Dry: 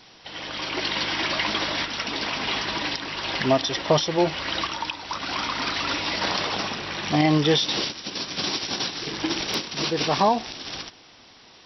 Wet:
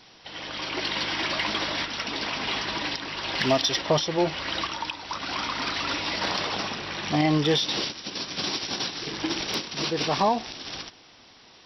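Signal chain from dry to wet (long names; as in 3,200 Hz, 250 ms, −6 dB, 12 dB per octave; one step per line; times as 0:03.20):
0:03.37–0:03.80: high-shelf EQ 2,000 Hz → 3,000 Hz +7.5 dB
in parallel at −6 dB: soft clipping −14.5 dBFS, distortion −16 dB
on the sum: level −5.5 dB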